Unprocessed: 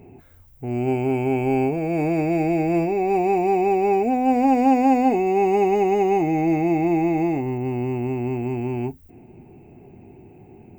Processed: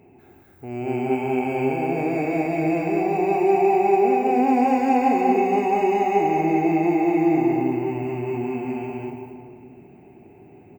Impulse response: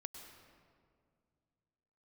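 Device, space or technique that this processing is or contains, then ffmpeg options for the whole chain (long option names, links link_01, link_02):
stadium PA: -filter_complex "[0:a]highpass=frequency=140:poles=1,equalizer=frequency=1600:width_type=o:width=2:gain=4.5,aecho=1:1:189.5|233.2:0.631|0.708[link_01];[1:a]atrim=start_sample=2205[link_02];[link_01][link_02]afir=irnorm=-1:irlink=0"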